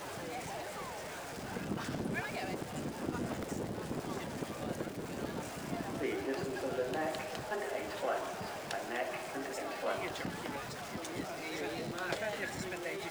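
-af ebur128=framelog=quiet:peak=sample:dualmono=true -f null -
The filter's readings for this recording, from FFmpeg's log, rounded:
Integrated loudness:
  I:         -35.9 LUFS
  Threshold: -45.9 LUFS
Loudness range:
  LRA:         2.3 LU
  Threshold: -55.7 LUFS
  LRA low:   -36.8 LUFS
  LRA high:  -34.5 LUFS
Sample peak:
  Peak:      -19.0 dBFS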